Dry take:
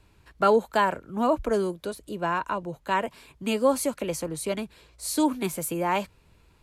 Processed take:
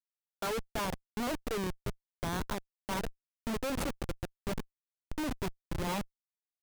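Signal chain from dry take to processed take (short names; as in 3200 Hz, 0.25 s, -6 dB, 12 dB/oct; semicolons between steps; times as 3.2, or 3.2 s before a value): low-pass opened by the level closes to 1600 Hz, open at -22 dBFS; Schmitt trigger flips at -25 dBFS; gain -5.5 dB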